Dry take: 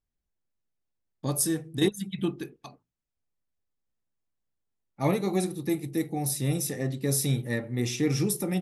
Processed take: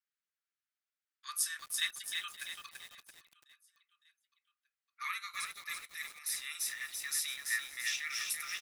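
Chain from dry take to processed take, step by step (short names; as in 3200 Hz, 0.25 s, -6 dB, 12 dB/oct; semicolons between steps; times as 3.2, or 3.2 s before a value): steep high-pass 1200 Hz 72 dB/oct; high shelf 5000 Hz -11.5 dB; feedback echo 0.559 s, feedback 56%, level -20.5 dB; lo-fi delay 0.336 s, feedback 55%, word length 9-bit, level -4 dB; gain +3 dB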